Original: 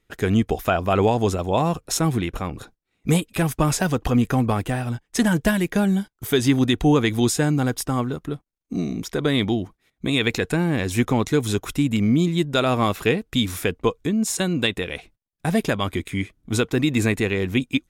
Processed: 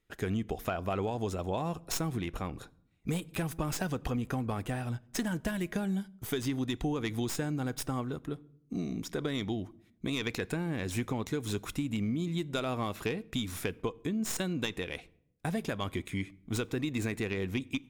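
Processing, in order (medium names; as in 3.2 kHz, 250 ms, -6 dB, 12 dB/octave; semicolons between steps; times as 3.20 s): tracing distortion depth 0.051 ms; compression, threshold -21 dBFS, peak gain reduction 8.5 dB; on a send: reverberation RT60 0.75 s, pre-delay 10 ms, DRR 21.5 dB; on the sum: trim -8 dB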